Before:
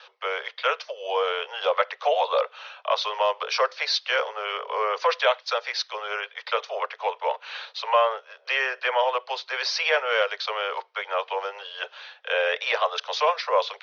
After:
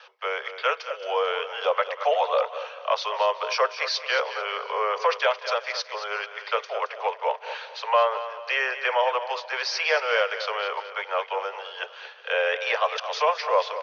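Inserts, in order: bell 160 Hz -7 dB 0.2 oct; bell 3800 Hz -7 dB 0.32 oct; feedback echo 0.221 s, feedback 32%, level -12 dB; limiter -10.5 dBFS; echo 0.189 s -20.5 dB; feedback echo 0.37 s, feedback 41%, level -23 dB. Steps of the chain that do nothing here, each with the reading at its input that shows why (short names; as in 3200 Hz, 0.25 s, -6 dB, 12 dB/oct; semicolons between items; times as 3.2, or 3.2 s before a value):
bell 160 Hz: input band starts at 360 Hz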